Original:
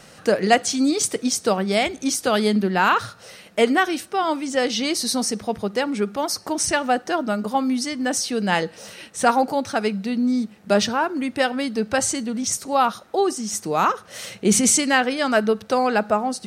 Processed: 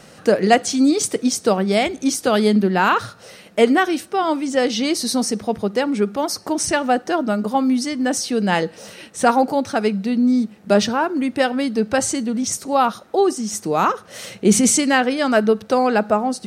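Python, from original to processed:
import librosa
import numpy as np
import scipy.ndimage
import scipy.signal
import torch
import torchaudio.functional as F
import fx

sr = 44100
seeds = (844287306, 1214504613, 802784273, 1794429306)

y = fx.peak_eq(x, sr, hz=290.0, db=4.5, octaves=2.6)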